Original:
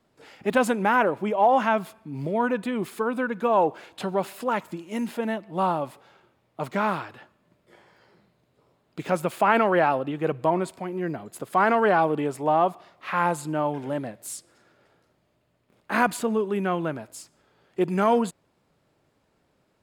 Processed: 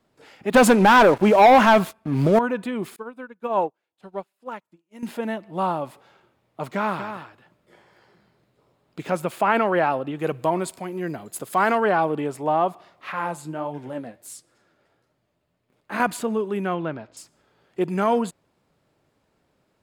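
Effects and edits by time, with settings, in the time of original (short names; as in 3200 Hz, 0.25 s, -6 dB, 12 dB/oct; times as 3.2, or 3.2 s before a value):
0.54–2.39 sample leveller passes 3
2.96–5.03 upward expander 2.5:1, over -41 dBFS
6.74–9.04 echo 0.24 s -9 dB
10.19–11.78 high shelf 4200 Hz +10.5 dB
13.12–16 flange 1.5 Hz, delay 6.3 ms, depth 7.2 ms, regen +49%
16.74–17.17 LPF 5000 Hz 24 dB/oct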